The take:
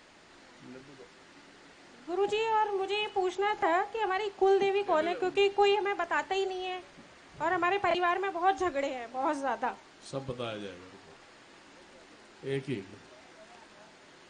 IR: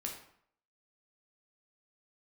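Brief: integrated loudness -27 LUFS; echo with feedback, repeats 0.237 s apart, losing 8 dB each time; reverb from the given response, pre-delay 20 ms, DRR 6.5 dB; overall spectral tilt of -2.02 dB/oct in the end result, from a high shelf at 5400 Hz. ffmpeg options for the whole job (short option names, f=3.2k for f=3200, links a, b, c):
-filter_complex "[0:a]highshelf=f=5.4k:g=4.5,aecho=1:1:237|474|711|948|1185:0.398|0.159|0.0637|0.0255|0.0102,asplit=2[a][b];[1:a]atrim=start_sample=2205,adelay=20[c];[b][c]afir=irnorm=-1:irlink=0,volume=-6dB[d];[a][d]amix=inputs=2:normalize=0,volume=1dB"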